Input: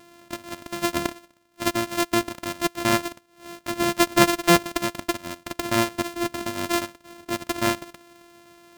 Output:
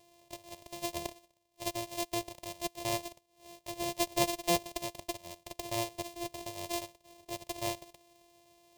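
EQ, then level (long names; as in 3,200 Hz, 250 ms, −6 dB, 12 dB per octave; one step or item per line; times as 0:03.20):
phaser with its sweep stopped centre 600 Hz, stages 4
−8.5 dB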